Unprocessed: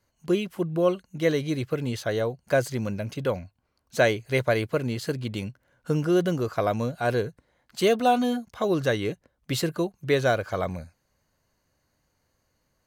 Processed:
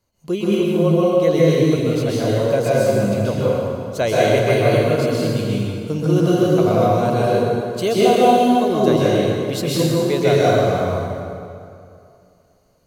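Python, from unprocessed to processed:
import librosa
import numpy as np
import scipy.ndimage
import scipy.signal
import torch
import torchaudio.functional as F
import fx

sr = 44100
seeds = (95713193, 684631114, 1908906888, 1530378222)

y = fx.peak_eq(x, sr, hz=1700.0, db=-8.5, octaves=0.62)
y = fx.rev_plate(y, sr, seeds[0], rt60_s=2.5, hf_ratio=0.7, predelay_ms=115, drr_db=-7.5)
y = F.gain(torch.from_numpy(y), 1.0).numpy()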